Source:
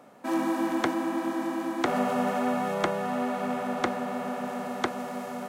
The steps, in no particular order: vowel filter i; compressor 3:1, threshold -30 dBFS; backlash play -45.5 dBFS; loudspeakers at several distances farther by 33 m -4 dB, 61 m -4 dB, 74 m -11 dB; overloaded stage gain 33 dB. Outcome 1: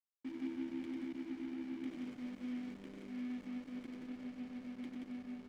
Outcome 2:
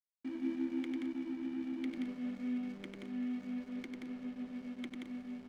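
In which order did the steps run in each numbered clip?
overloaded stage > loudspeakers at several distances > compressor > vowel filter > backlash; compressor > vowel filter > overloaded stage > loudspeakers at several distances > backlash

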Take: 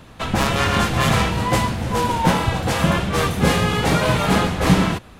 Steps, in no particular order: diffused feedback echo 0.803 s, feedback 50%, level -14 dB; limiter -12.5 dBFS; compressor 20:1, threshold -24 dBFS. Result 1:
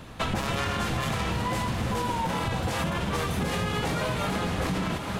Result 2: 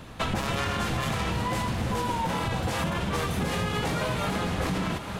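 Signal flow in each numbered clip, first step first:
diffused feedback echo > limiter > compressor; limiter > diffused feedback echo > compressor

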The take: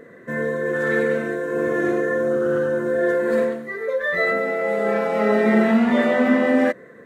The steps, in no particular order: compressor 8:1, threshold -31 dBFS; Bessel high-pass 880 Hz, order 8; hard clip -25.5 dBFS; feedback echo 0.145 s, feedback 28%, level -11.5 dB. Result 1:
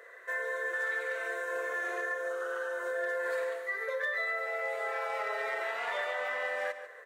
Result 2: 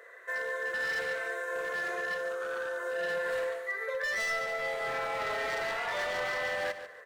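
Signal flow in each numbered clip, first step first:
Bessel high-pass > compressor > feedback echo > hard clip; Bessel high-pass > hard clip > compressor > feedback echo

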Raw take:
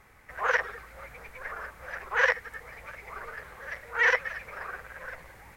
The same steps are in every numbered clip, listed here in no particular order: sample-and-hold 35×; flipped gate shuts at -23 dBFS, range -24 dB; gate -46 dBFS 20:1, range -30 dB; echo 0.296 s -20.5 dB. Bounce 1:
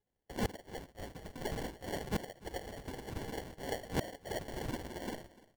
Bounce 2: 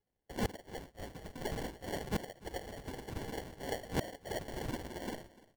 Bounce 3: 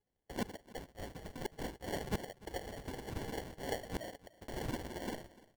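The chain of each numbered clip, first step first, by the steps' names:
sample-and-hold > gate > flipped gate > echo; gate > sample-and-hold > flipped gate > echo; flipped gate > sample-and-hold > gate > echo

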